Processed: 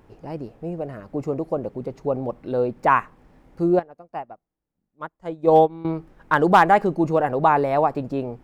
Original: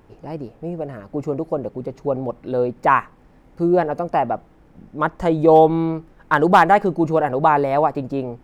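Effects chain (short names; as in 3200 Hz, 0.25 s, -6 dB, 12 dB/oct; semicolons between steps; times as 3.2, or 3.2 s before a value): 3.79–5.85 upward expander 2.5:1, over -31 dBFS; gain -2 dB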